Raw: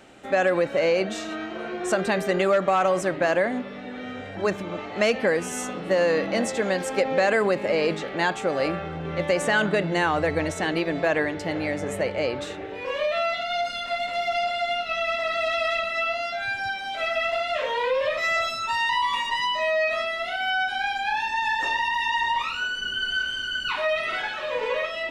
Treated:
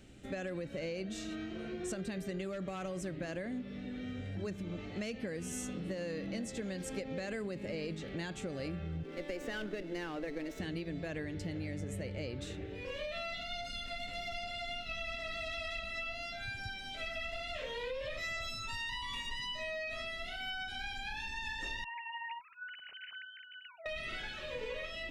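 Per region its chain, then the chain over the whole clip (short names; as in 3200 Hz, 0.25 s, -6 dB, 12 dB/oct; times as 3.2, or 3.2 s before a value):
9.03–10.6 steep high-pass 240 Hz + air absorption 110 m + running maximum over 3 samples
21.84–23.86 sine-wave speech + HPF 220 Hz 6 dB/oct + tilt shelf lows +9.5 dB, about 790 Hz
whole clip: passive tone stack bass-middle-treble 10-0-1; compressor, threshold -50 dBFS; gain +14 dB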